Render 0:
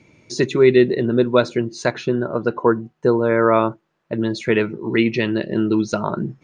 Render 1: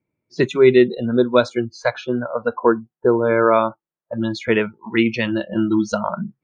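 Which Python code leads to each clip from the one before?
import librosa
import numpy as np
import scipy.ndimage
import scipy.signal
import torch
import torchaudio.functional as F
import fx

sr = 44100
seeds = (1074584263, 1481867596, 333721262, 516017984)

y = fx.env_lowpass(x, sr, base_hz=1700.0, full_db=-14.5)
y = fx.noise_reduce_blind(y, sr, reduce_db=26)
y = F.gain(torch.from_numpy(y), 1.0).numpy()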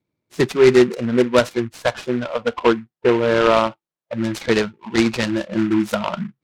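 y = fx.noise_mod_delay(x, sr, seeds[0], noise_hz=1600.0, depth_ms=0.055)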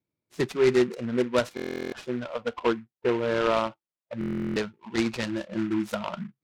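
y = fx.buffer_glitch(x, sr, at_s=(1.55, 4.19), block=1024, repeats=15)
y = F.gain(torch.from_numpy(y), -9.0).numpy()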